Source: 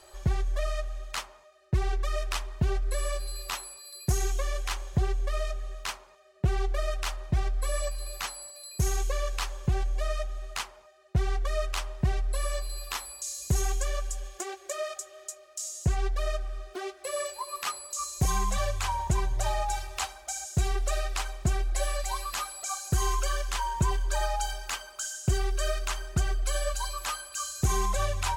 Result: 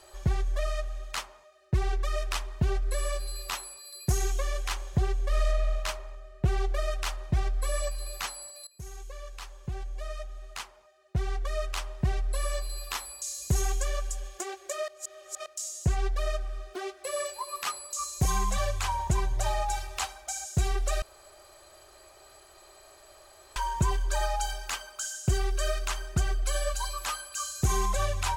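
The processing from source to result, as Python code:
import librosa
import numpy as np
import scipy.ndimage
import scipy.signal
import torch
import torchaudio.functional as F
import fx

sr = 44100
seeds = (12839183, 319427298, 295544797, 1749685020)

y = fx.reverb_throw(x, sr, start_s=5.27, length_s=0.49, rt60_s=2.3, drr_db=1.0)
y = fx.edit(y, sr, fx.fade_in_from(start_s=8.67, length_s=3.84, floor_db=-18.0),
    fx.reverse_span(start_s=14.88, length_s=0.58),
    fx.room_tone_fill(start_s=21.02, length_s=2.54), tone=tone)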